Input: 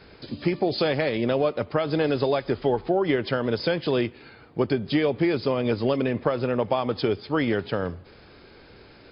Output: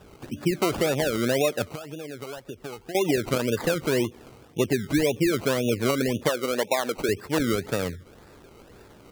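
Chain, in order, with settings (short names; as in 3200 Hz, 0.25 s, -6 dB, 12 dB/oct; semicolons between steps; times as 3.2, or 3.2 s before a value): spectral gate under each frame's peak -20 dB strong; 6.29–7.09 HPF 300 Hz 12 dB/oct; decimation with a swept rate 20×, swing 60% 1.9 Hz; 1.67–2.95 compressor 6:1, threshold -35 dBFS, peak gain reduction 16 dB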